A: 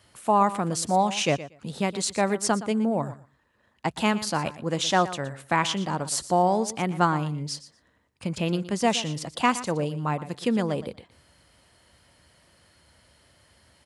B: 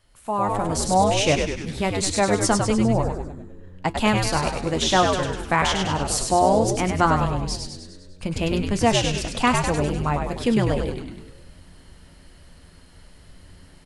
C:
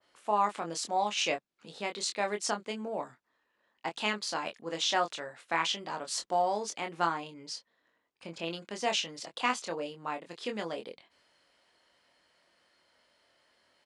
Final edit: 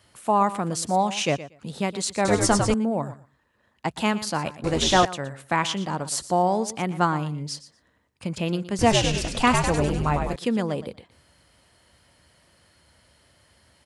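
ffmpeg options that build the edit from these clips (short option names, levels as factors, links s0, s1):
-filter_complex "[1:a]asplit=3[s0][s1][s2];[0:a]asplit=4[s3][s4][s5][s6];[s3]atrim=end=2.252[s7];[s0]atrim=start=2.248:end=2.742[s8];[s4]atrim=start=2.738:end=4.642[s9];[s1]atrim=start=4.638:end=5.052[s10];[s5]atrim=start=5.048:end=8.792[s11];[s2]atrim=start=8.788:end=10.362[s12];[s6]atrim=start=10.358[s13];[s7][s8]acrossfade=d=0.004:c1=hsin:c2=hsin[s14];[s14][s9]acrossfade=d=0.004:c1=hsin:c2=hsin[s15];[s15][s10]acrossfade=d=0.004:c1=hsin:c2=hsin[s16];[s16][s11]acrossfade=d=0.004:c1=hsin:c2=hsin[s17];[s17][s12]acrossfade=d=0.004:c1=hsin:c2=hsin[s18];[s18][s13]acrossfade=d=0.004:c1=hsin:c2=hsin"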